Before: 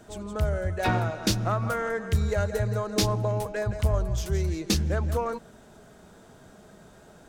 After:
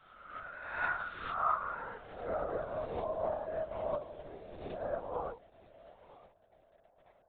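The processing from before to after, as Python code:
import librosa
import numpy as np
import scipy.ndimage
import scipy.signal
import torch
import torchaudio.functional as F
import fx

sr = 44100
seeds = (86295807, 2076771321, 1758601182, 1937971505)

p1 = fx.spec_swells(x, sr, rise_s=1.28)
p2 = fx.dynamic_eq(p1, sr, hz=640.0, q=6.7, threshold_db=-38.0, ratio=4.0, max_db=-3)
p3 = fx.filter_sweep_bandpass(p2, sr, from_hz=1400.0, to_hz=660.0, start_s=1.17, end_s=2.52, q=4.2)
p4 = fx.echo_feedback(p3, sr, ms=951, feedback_pct=28, wet_db=-14.0)
p5 = fx.quant_dither(p4, sr, seeds[0], bits=8, dither='none')
p6 = p4 + F.gain(torch.from_numpy(p5), -6.0).numpy()
p7 = fx.lpc_vocoder(p6, sr, seeds[1], excitation='whisper', order=16)
p8 = fx.upward_expand(p7, sr, threshold_db=-43.0, expansion=1.5)
y = F.gain(torch.from_numpy(p8), -3.0).numpy()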